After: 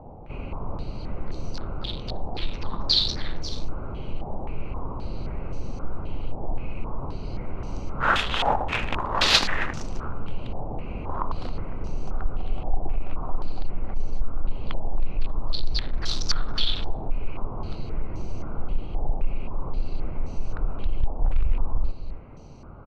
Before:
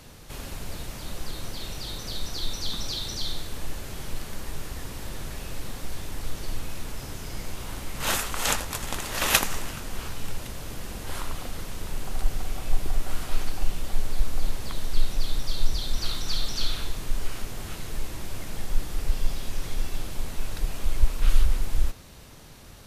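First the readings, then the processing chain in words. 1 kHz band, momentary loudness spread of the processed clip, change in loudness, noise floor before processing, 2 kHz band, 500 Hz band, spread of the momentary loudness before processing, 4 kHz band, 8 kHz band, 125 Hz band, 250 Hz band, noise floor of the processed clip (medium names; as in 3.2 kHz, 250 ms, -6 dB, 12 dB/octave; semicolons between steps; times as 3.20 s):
+6.5 dB, 13 LU, +2.5 dB, -45 dBFS, +3.0 dB, +4.0 dB, 11 LU, +4.5 dB, -8.5 dB, +2.0 dB, +3.5 dB, -35 dBFS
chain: local Wiener filter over 25 samples; in parallel at -3 dB: compression, threshold -25 dBFS, peak gain reduction 14.5 dB; on the sum: saturation -12 dBFS, distortion -15 dB; on a send: delay 270 ms -10.5 dB; on the sum: step-sequenced low-pass 3.8 Hz 800–5800 Hz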